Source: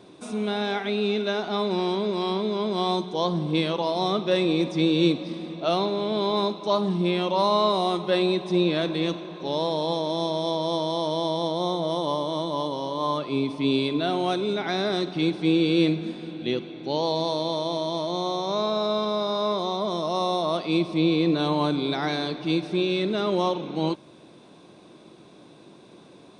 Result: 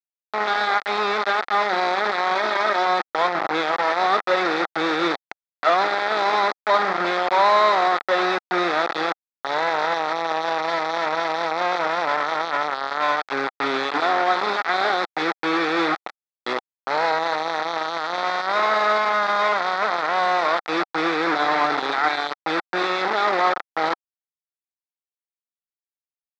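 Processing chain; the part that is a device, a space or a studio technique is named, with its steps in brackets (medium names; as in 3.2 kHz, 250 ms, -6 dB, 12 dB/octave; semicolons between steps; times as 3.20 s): hand-held game console (bit crusher 4-bit; cabinet simulation 450–4100 Hz, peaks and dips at 780 Hz +7 dB, 1.3 kHz +10 dB, 1.9 kHz +6 dB, 2.9 kHz -10 dB); 2.35–2.86 s: comb 3.2 ms; trim +2 dB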